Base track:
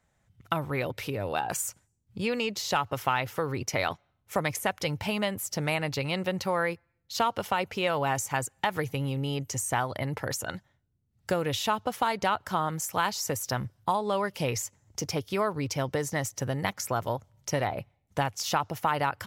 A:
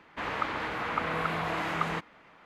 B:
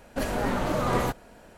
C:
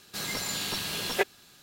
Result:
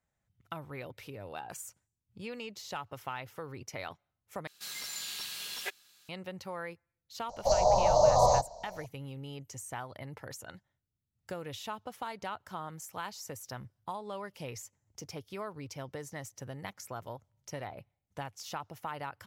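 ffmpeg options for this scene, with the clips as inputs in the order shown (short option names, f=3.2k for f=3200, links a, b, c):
-filter_complex "[0:a]volume=-12.5dB[a];[3:a]tiltshelf=f=910:g=-9[b];[2:a]firequalizer=gain_entry='entry(120,0);entry(290,-24);entry(600,12);entry(990,6);entry(1500,-28);entry(2700,-27);entry(4100,7);entry(6300,14);entry(9800,-27)':delay=0.05:min_phase=1[c];[a]asplit=2[d][e];[d]atrim=end=4.474[f];[b]atrim=end=1.62,asetpts=PTS-STARTPTS,volume=-14.5dB[g];[e]atrim=start=6.086[h];[c]atrim=end=1.57,asetpts=PTS-STARTPTS,volume=-2dB,afade=t=in:d=0.004:c=hsin,afade=t=out:st=1.566:d=0.004:c=hsin,adelay=7290[i];[f][g]acrossfade=d=0.004:c1=hsin:c2=hsin[j];[j][h]acrossfade=d=0.004:c1=hsin:c2=hsin[k];[k][i]amix=inputs=2:normalize=0"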